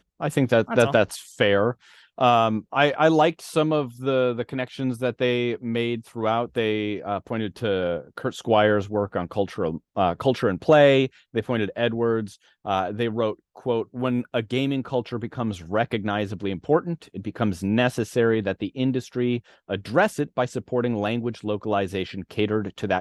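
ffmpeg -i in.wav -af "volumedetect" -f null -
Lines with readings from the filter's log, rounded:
mean_volume: -23.6 dB
max_volume: -4.9 dB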